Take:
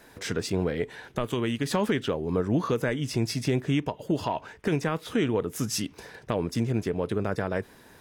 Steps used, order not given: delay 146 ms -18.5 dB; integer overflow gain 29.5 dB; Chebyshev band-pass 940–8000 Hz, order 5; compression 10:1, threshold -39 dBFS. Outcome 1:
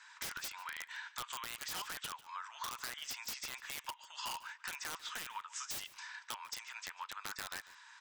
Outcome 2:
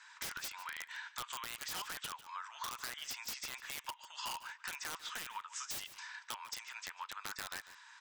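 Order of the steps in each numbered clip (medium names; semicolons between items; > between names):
Chebyshev band-pass > integer overflow > compression > delay; Chebyshev band-pass > integer overflow > delay > compression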